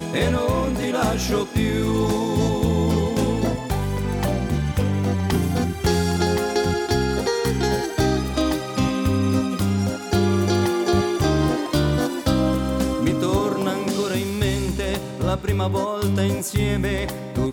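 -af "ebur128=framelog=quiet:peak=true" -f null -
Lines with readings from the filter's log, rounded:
Integrated loudness:
  I:         -21.9 LUFS
  Threshold: -31.9 LUFS
Loudness range:
  LRA:         2.1 LU
  Threshold: -41.9 LUFS
  LRA low:   -23.0 LUFS
  LRA high:  -20.9 LUFS
True peak:
  Peak:       -9.2 dBFS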